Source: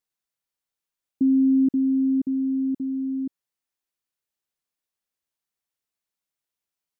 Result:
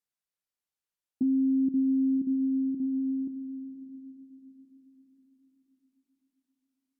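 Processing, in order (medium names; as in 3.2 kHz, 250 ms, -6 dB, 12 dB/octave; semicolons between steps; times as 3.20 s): echo that smears into a reverb 549 ms, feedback 45%, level -10.5 dB; low-pass that closes with the level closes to 360 Hz, closed at -20 dBFS; trim -5.5 dB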